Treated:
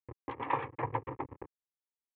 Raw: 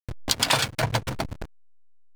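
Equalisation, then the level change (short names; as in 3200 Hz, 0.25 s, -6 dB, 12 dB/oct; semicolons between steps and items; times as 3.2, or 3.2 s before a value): HPF 150 Hz 12 dB/oct; LPF 1600 Hz 24 dB/oct; fixed phaser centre 980 Hz, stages 8; -3.0 dB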